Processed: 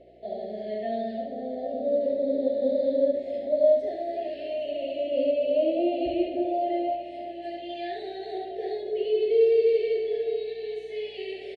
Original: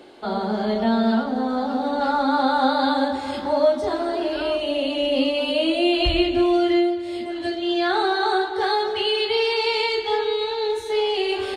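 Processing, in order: on a send: feedback delay 809 ms, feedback 57%, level -14.5 dB; on the sum: wah-wah 0.29 Hz 480–1000 Hz, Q 2.7; Chebyshev band-stop 690–1800 Hz, order 5; delay 70 ms -4.5 dB; mains buzz 60 Hz, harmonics 8, -65 dBFS -2 dB/octave; trim +2.5 dB

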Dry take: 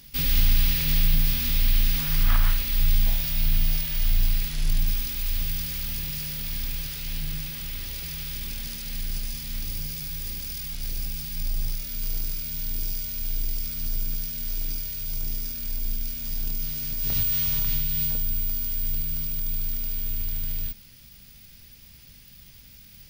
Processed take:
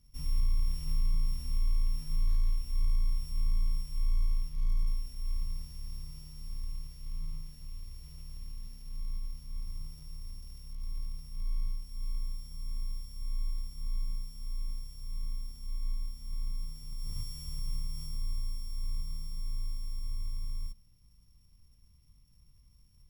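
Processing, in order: sorted samples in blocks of 8 samples; amplifier tone stack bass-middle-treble 10-0-1; in parallel at -8 dB: sample-and-hold 40×; on the sum: compression, threshold -20 dBFS, peak gain reduction 3.5 dB; trim -2.5 dB

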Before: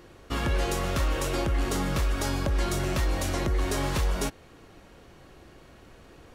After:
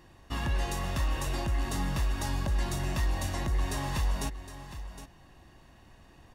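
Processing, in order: comb 1.1 ms, depth 54%; on a send: delay 763 ms -12.5 dB; on the sum: trim -6 dB

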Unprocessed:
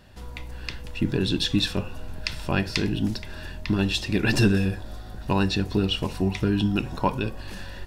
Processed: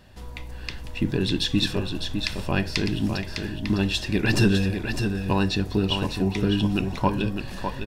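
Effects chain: band-stop 1.4 kHz, Q 20; delay 605 ms -6.5 dB

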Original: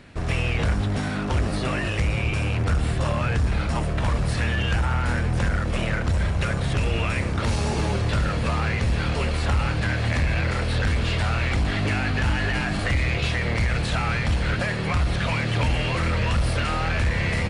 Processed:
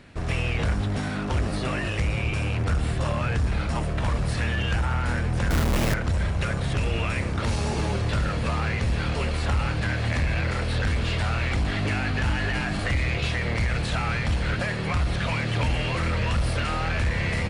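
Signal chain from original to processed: 5.50–5.94 s: square wave that keeps the level; trim -2 dB

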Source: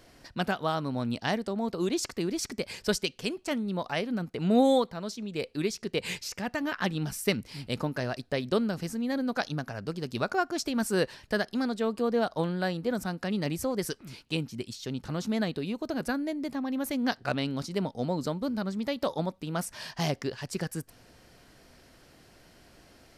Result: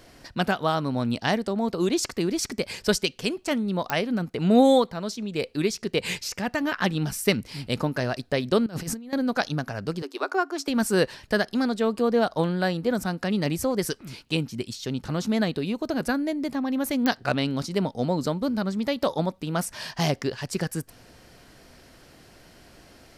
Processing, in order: 8.66–9.13 s: compressor with a negative ratio -37 dBFS, ratio -0.5; 10.02–10.68 s: rippled Chebyshev high-pass 270 Hz, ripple 6 dB; clicks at 3.90/17.06 s, -14 dBFS; trim +5 dB

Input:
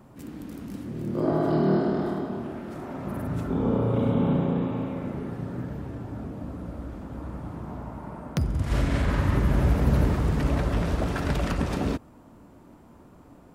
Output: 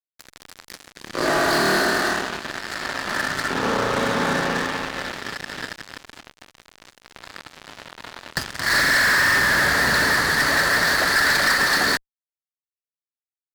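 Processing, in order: two resonant band-passes 2.8 kHz, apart 1.3 oct; fuzz box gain 51 dB, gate -56 dBFS; trim -2 dB

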